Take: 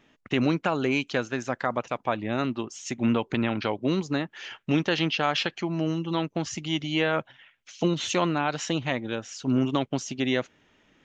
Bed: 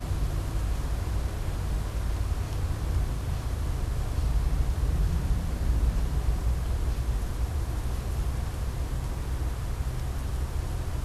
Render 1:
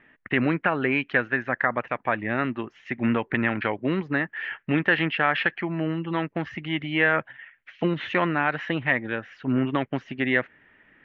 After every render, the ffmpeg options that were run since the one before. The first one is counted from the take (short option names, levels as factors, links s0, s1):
-af "lowpass=f=2700:w=0.5412,lowpass=f=2700:w=1.3066,equalizer=f=1800:t=o:w=0.58:g=13"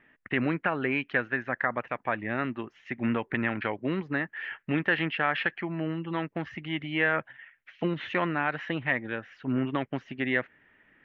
-af "volume=0.596"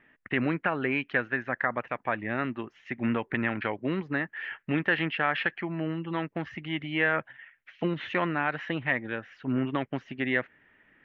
-af anull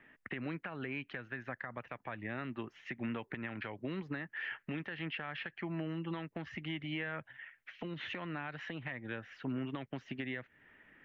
-filter_complex "[0:a]acrossover=split=150|3600[s0][s1][s2];[s0]acompressor=threshold=0.00447:ratio=4[s3];[s1]acompressor=threshold=0.0126:ratio=4[s4];[s2]acompressor=threshold=0.00282:ratio=4[s5];[s3][s4][s5]amix=inputs=3:normalize=0,alimiter=level_in=1.78:limit=0.0631:level=0:latency=1:release=194,volume=0.562"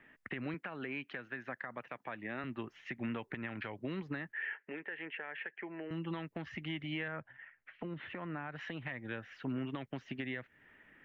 -filter_complex "[0:a]asettb=1/sr,asplit=3[s0][s1][s2];[s0]atrim=end=0.544[s3];[s1]atrim=start=0.54:end=2.44,asetpts=PTS-STARTPTS,afade=t=in:d=0.004:c=qsin,afade=t=out:st=1.896:d=0.004:c=qsin,highpass=170[s4];[s2]atrim=start=2.436[s5];[s3][s4]acrossfade=d=0.004:c1=hsin:c2=qsin[s6];[s6][s5]acrossfade=d=0.004:c1=qsin:c2=hsin,asettb=1/sr,asplit=3[s7][s8][s9];[s7]atrim=end=4.324[s10];[s8]atrim=start=4.32:end=5.91,asetpts=PTS-STARTPTS,afade=t=in:d=0.004:c=qsin,afade=t=out:st=1.586:d=0.004:c=qsin,highpass=420,equalizer=f=430:t=q:w=4:g=7,equalizer=f=690:t=q:w=4:g=-4,equalizer=f=1200:t=q:w=4:g=-9,equalizer=f=1800:t=q:w=4:g=3,lowpass=f=2500:w=0.5412,lowpass=f=2500:w=1.3066[s11];[s9]atrim=start=5.906[s12];[s10][s11]acrossfade=d=0.004:c1=hsin:c2=qsin[s13];[s13][s12]acrossfade=d=0.004:c1=qsin:c2=hsin,asettb=1/sr,asplit=3[s14][s15][s16];[s14]atrim=end=7.084[s17];[s15]atrim=start=7.08:end=8.56,asetpts=PTS-STARTPTS,afade=t=in:d=0.004:c=qsin,afade=t=out:st=1.476:d=0.004:c=qsin,lowpass=1800[s18];[s16]atrim=start=8.556[s19];[s17][s18]acrossfade=d=0.004:c1=hsin:c2=qsin[s20];[s20][s19]acrossfade=d=0.004:c1=qsin:c2=hsin"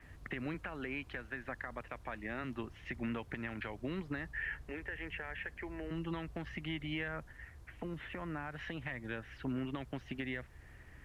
-filter_complex "[1:a]volume=0.0501[s0];[0:a][s0]amix=inputs=2:normalize=0"